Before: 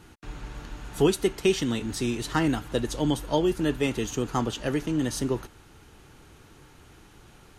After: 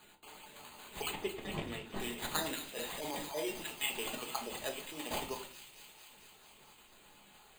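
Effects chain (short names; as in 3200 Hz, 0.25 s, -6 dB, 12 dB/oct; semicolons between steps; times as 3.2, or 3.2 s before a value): random spectral dropouts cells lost 32%; HPF 910 Hz 12 dB/oct; sample-and-hold 8×; 1.11–2 tape spacing loss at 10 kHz 22 dB; thin delay 0.224 s, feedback 75%, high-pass 2400 Hz, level -10 dB; shoebox room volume 350 m³, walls furnished, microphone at 1.4 m; 2.69–3.47 transient shaper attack -9 dB, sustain +4 dB; bell 1500 Hz -8.5 dB 1.2 oct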